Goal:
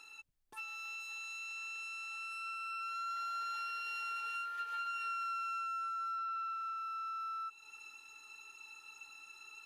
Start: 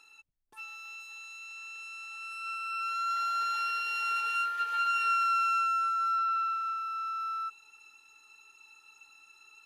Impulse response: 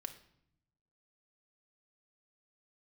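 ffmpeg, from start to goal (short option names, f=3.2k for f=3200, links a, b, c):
-af "acompressor=threshold=-46dB:ratio=3,volume=3dB"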